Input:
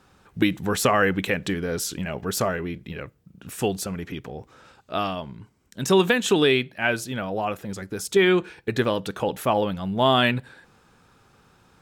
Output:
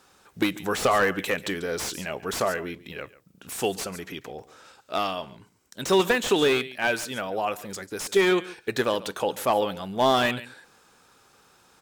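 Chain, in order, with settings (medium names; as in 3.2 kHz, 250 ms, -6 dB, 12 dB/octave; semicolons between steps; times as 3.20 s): tone controls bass -11 dB, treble +7 dB; delay 141 ms -19 dB; slew-rate limiter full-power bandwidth 190 Hz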